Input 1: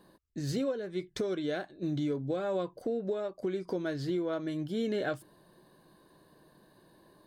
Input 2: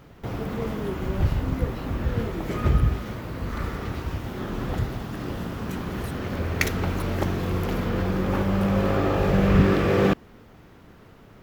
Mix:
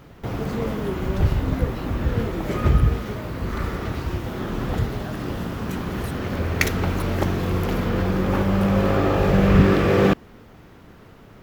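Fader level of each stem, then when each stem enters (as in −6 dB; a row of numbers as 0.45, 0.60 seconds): −6.5, +3.0 decibels; 0.00, 0.00 seconds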